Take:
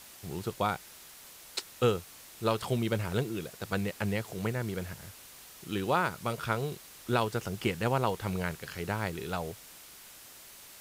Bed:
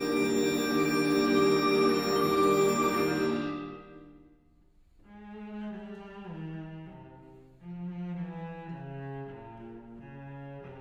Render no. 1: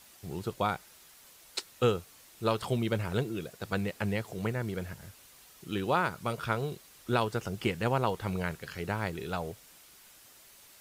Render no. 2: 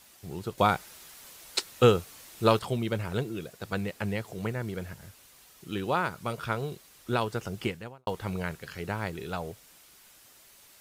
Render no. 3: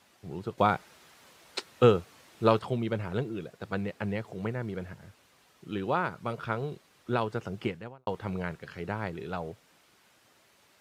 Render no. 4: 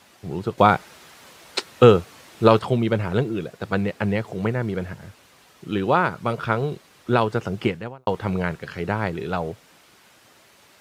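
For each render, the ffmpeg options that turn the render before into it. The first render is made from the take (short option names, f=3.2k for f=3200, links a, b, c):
-af "afftdn=nr=6:nf=-51"
-filter_complex "[0:a]asplit=4[a][b][c][d];[a]atrim=end=0.582[e];[b]atrim=start=0.578:end=2.592,asetpts=PTS-STARTPTS,volume=6.5dB[f];[c]atrim=start=2.588:end=8.07,asetpts=PTS-STARTPTS,afade=t=out:st=5.062:d=0.42:c=qua[g];[d]atrim=start=8.07,asetpts=PTS-STARTPTS,afade=t=in:d=0.004:c=hsin[h];[e][f]acrossfade=d=0.004:c1=hsin:c2=hsin[i];[g][h]concat=n=2:v=0:a=1[j];[i][j]acrossfade=d=0.004:c1=hsin:c2=hsin"
-af "highpass=91,aemphasis=mode=reproduction:type=75kf"
-af "volume=9.5dB,alimiter=limit=-1dB:level=0:latency=1"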